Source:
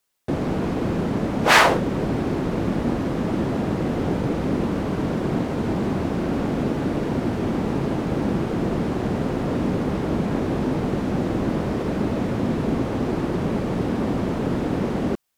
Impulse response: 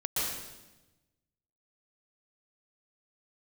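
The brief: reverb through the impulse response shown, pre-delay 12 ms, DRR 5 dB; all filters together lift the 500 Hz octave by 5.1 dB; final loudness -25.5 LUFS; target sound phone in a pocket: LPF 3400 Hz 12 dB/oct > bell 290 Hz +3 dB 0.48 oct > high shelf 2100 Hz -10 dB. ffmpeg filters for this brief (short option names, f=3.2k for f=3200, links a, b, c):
-filter_complex "[0:a]equalizer=f=500:t=o:g=6.5,asplit=2[a][b];[1:a]atrim=start_sample=2205,adelay=12[c];[b][c]afir=irnorm=-1:irlink=0,volume=-12dB[d];[a][d]amix=inputs=2:normalize=0,lowpass=3.4k,equalizer=f=290:t=o:w=0.48:g=3,highshelf=f=2.1k:g=-10,volume=-6dB"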